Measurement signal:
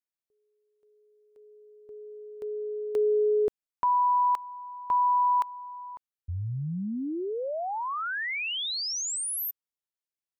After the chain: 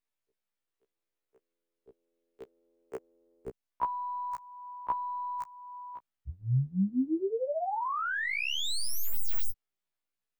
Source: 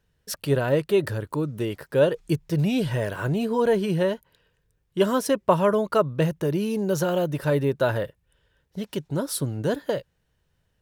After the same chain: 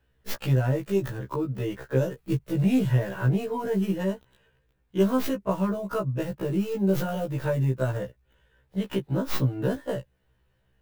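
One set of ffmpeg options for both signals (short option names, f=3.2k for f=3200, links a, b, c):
-filter_complex "[0:a]acrossover=split=220|4000[a][b][c];[b]acompressor=threshold=-34dB:ratio=4:attack=79:release=714:knee=1:detection=peak[d];[c]aeval=exprs='abs(val(0))':c=same[e];[a][d][e]amix=inputs=3:normalize=0,afftfilt=real='re*1.73*eq(mod(b,3),0)':imag='im*1.73*eq(mod(b,3),0)':win_size=2048:overlap=0.75,volume=5dB"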